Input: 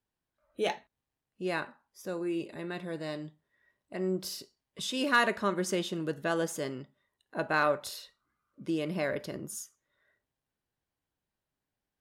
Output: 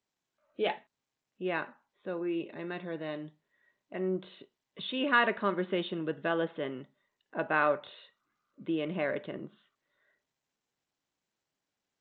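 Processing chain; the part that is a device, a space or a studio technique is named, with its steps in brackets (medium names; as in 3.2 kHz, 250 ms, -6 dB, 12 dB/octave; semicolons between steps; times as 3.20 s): Bluetooth headset (high-pass 160 Hz 12 dB/octave; resampled via 8 kHz; SBC 64 kbps 16 kHz)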